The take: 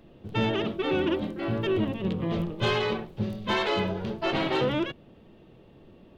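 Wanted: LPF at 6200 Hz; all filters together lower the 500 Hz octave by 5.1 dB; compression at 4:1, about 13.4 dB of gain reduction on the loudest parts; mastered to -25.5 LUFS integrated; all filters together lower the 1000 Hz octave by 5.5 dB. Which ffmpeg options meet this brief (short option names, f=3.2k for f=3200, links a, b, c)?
-af "lowpass=6.2k,equalizer=f=500:t=o:g=-6,equalizer=f=1k:t=o:g=-5,acompressor=threshold=-41dB:ratio=4,volume=17dB"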